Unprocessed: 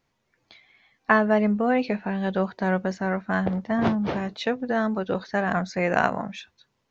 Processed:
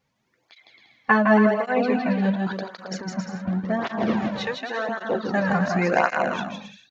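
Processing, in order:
0:02.35–0:03.48: compressor whose output falls as the input rises −32 dBFS, ratio −0.5
0:04.14–0:04.89: high-pass filter 580 Hz 12 dB per octave
bouncing-ball delay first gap 160 ms, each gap 0.7×, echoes 5
through-zero flanger with one copy inverted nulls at 0.9 Hz, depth 3.2 ms
level +3 dB

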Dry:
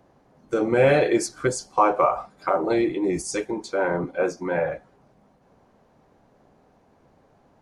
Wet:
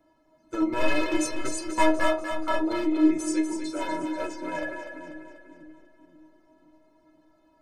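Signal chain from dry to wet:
wavefolder on the positive side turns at −17.5 dBFS
stiff-string resonator 310 Hz, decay 0.22 s, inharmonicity 0.008
echo with a time of its own for lows and highs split 320 Hz, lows 525 ms, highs 244 ms, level −7.5 dB
level +9 dB

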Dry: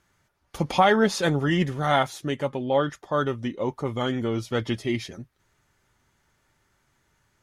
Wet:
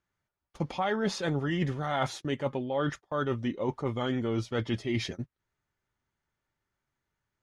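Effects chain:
noise gate −38 dBFS, range −20 dB
reversed playback
downward compressor 6 to 1, threshold −31 dBFS, peak gain reduction 16.5 dB
reversed playback
high-frequency loss of the air 63 metres
level +4 dB

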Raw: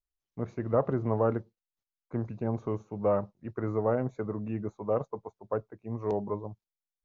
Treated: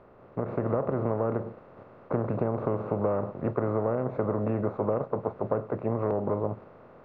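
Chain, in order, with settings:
compressor on every frequency bin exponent 0.4
downward compressor, threshold −27 dBFS, peak gain reduction 10 dB
high-frequency loss of the air 380 metres
automatic gain control gain up to 4.5 dB

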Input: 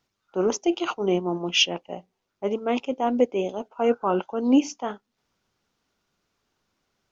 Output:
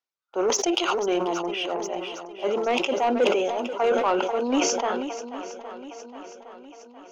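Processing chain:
high-pass filter 480 Hz 12 dB per octave
noise gate with hold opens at −57 dBFS
0:01.28–0:01.86: low-pass filter 1,200 Hz 12 dB per octave
soft clipping −20.5 dBFS, distortion −14 dB
feedback echo with a long and a short gap by turns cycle 813 ms, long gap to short 1.5 to 1, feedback 51%, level −12.5 dB
level that may fall only so fast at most 32 dB per second
level +5 dB

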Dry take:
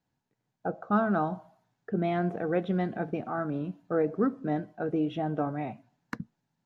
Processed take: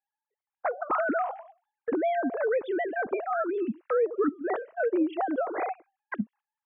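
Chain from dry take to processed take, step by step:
three sine waves on the formant tracks
noise gate −55 dBFS, range −11 dB
downward compressor 3 to 1, threshold −34 dBFS, peak gain reduction 12 dB
level +8 dB

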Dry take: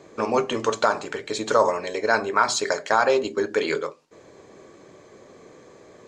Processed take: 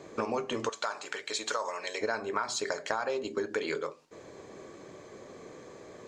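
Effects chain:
0:00.69–0:02.01: high-pass filter 1,500 Hz 6 dB per octave
downward compressor 6 to 1, threshold −29 dBFS, peak gain reduction 14.5 dB

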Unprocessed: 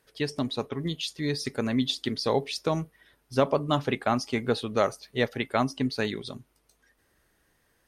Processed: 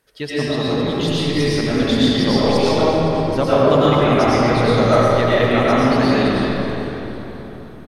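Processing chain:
on a send: echo with shifted repeats 256 ms, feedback 61%, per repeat −66 Hz, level −11 dB
on the sum: comb and all-pass reverb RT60 3.8 s, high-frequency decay 0.45×, pre-delay 65 ms, DRR −9.5 dB
level +1.5 dB

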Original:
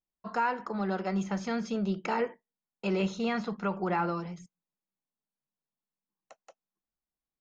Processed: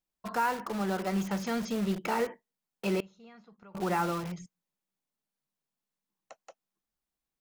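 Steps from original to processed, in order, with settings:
0:03.00–0:03.75: gate with flip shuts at −34 dBFS, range −26 dB
in parallel at −7 dB: wrap-around overflow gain 34.5 dB

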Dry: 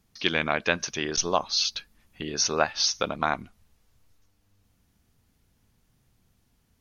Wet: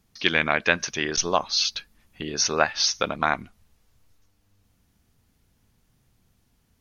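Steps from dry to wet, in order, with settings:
dynamic equaliser 1,900 Hz, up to +5 dB, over −39 dBFS, Q 1.7
level +1.5 dB

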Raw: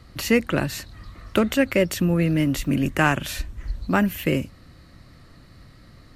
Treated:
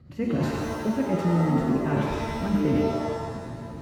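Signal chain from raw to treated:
on a send: feedback echo with a high-pass in the loop 156 ms, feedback 58%, high-pass 920 Hz, level −11 dB
on the sum: rotating-speaker cabinet horn 5.5 Hz
phase-vocoder stretch with locked phases 0.62×
reversed playback
downward compressor 12 to 1, threshold −35 dBFS, peak gain reduction 20.5 dB
reversed playback
high-pass filter 140 Hz 12 dB per octave
spectral tilt −4 dB per octave
reverb with rising layers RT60 1.3 s, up +7 semitones, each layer −2 dB, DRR 1.5 dB
level +4.5 dB

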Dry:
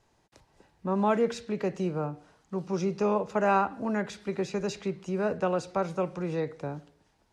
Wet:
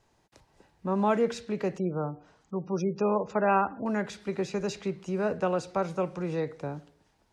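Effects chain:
0:01.78–0:03.86: gate on every frequency bin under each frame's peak −30 dB strong

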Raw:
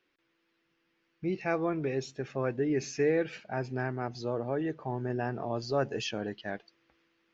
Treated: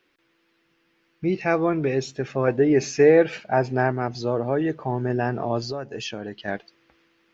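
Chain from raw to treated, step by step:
0:02.47–0:03.92: dynamic equaliser 720 Hz, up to +7 dB, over −43 dBFS, Q 0.97
0:05.61–0:06.48: downward compressor 6 to 1, threshold −37 dBFS, peak gain reduction 13.5 dB
level +8.5 dB

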